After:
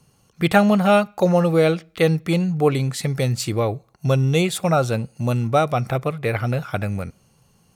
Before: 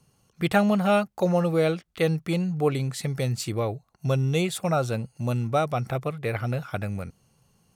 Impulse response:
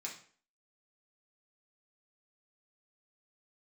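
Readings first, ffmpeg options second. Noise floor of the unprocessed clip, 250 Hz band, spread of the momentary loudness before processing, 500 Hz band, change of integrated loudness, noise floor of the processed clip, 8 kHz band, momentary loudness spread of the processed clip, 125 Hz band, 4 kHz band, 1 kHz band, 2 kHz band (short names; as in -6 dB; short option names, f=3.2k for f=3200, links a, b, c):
-68 dBFS, +5.5 dB, 9 LU, +6.0 dB, +5.5 dB, -60 dBFS, +5.5 dB, 8 LU, +5.5 dB, +6.0 dB, +6.0 dB, +6.0 dB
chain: -filter_complex "[0:a]asplit=2[a][b];[1:a]atrim=start_sample=2205,lowpass=6.1k[c];[b][c]afir=irnorm=-1:irlink=0,volume=-19dB[d];[a][d]amix=inputs=2:normalize=0,volume=5.5dB"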